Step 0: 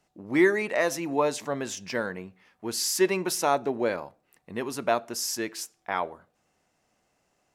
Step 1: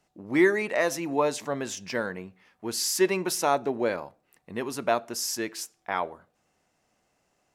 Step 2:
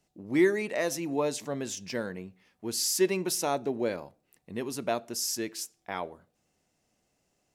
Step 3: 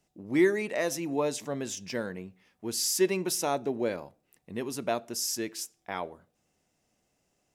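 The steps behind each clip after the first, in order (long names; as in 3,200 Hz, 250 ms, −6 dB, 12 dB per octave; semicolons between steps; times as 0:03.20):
no processing that can be heard
parametric band 1,200 Hz −8.5 dB 2.1 octaves
notch filter 4,300 Hz, Q 20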